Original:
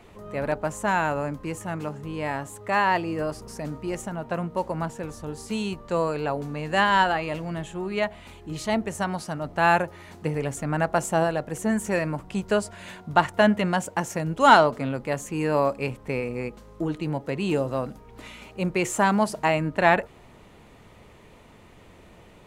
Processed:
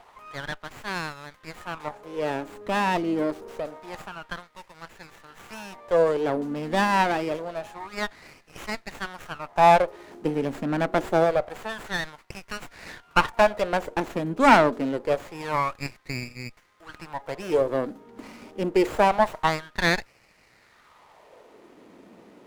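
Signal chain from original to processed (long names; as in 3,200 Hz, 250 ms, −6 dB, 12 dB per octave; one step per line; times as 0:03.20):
auto-filter high-pass sine 0.26 Hz 240–2,400 Hz
windowed peak hold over 9 samples
level −1 dB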